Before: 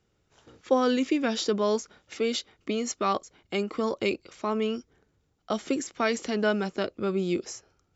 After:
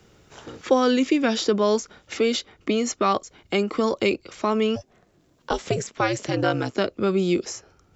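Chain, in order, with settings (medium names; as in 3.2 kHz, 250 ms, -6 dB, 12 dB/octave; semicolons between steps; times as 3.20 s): 4.75–6.73 s: ring modulator 350 Hz -> 64 Hz; three bands compressed up and down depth 40%; trim +5.5 dB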